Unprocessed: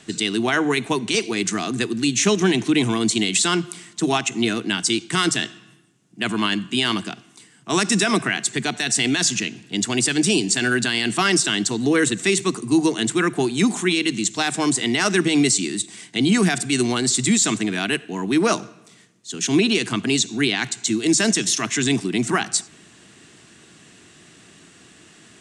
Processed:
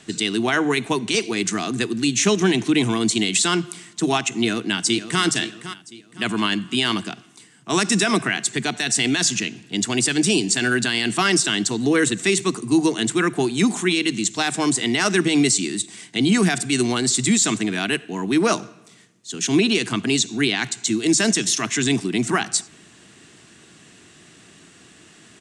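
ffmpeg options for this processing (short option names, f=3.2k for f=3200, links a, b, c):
-filter_complex "[0:a]asplit=2[a][b];[b]afade=t=in:st=4.31:d=0.01,afade=t=out:st=5.22:d=0.01,aecho=0:1:510|1020|1530|2040:0.237137|0.0829981|0.0290493|0.0101673[c];[a][c]amix=inputs=2:normalize=0"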